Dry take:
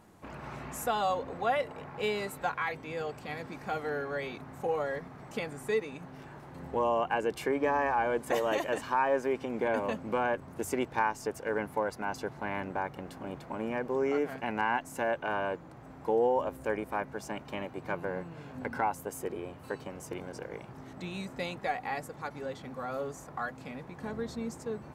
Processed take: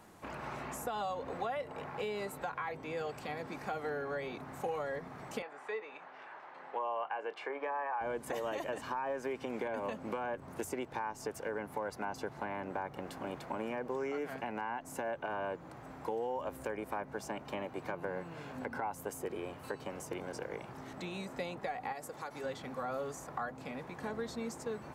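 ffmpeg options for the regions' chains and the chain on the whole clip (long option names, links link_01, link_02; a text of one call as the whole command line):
ffmpeg -i in.wav -filter_complex "[0:a]asettb=1/sr,asplit=3[link_01][link_02][link_03];[link_01]atrim=end=5.424[link_04];[link_02]atrim=start=5.42:end=8.01,asetpts=PTS-STARTPTS,afade=type=in:duration=0.004:curve=qsin,afade=type=out:start_time=2.586:duration=0.004:curve=qsin,highpass=700,lowpass=2700,asplit=2[link_05][link_06];[link_06]adelay=28,volume=-14dB[link_07];[link_05][link_07]amix=inputs=2:normalize=0,atrim=end_sample=114219[link_08];[link_03]atrim=start=8.006[link_09];[link_04][link_08]acrossfade=duration=0.004:curve1=hsin:curve2=qsin[link_10];[link_10][link_09]acrossfade=duration=0.004:curve1=qsin:curve2=hsin,asettb=1/sr,asplit=3[link_11][link_12][link_13];[link_11]atrim=end=21.924[link_14];[link_12]atrim=start=21.92:end=22.44,asetpts=PTS-STARTPTS,afade=type=in:duration=0.004:curve=qsin,afade=type=out:start_time=0.516:duration=0.004:curve=qsin,bass=frequency=250:gain=-6,treble=frequency=4000:gain=5,acompressor=threshold=-39dB:ratio=3:attack=3.2:release=140:knee=1:detection=peak[link_15];[link_13]atrim=start=22.436[link_16];[link_14][link_15]acrossfade=duration=0.004:curve1=hsin:curve2=qsin[link_17];[link_17][link_16]acrossfade=duration=0.004:curve1=qsin:curve2=hsin,lowshelf=frequency=370:gain=-6.5,alimiter=level_in=0.5dB:limit=-24dB:level=0:latency=1:release=147,volume=-0.5dB,acrossover=split=210|1100[link_18][link_19][link_20];[link_18]acompressor=threshold=-53dB:ratio=4[link_21];[link_19]acompressor=threshold=-40dB:ratio=4[link_22];[link_20]acompressor=threshold=-50dB:ratio=4[link_23];[link_21][link_22][link_23]amix=inputs=3:normalize=0,volume=3.5dB" out.wav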